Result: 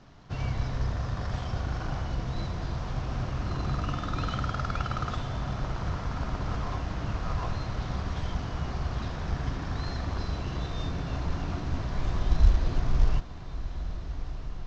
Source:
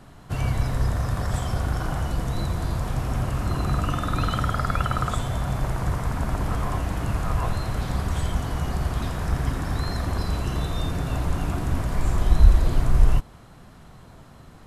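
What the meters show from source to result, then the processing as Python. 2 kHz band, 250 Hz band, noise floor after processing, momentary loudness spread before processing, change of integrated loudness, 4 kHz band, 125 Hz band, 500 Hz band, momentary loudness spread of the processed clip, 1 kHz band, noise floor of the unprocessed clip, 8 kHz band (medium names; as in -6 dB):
-5.5 dB, -6.0 dB, -37 dBFS, 5 LU, -6.5 dB, -4.5 dB, -6.0 dB, -6.0 dB, 5 LU, -6.0 dB, -47 dBFS, -11.0 dB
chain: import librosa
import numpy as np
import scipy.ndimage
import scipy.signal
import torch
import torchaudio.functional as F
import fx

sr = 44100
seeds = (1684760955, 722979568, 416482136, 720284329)

y = fx.cvsd(x, sr, bps=32000)
y = fx.echo_diffused(y, sr, ms=1425, feedback_pct=44, wet_db=-11.5)
y = F.gain(torch.from_numpy(y), -6.0).numpy()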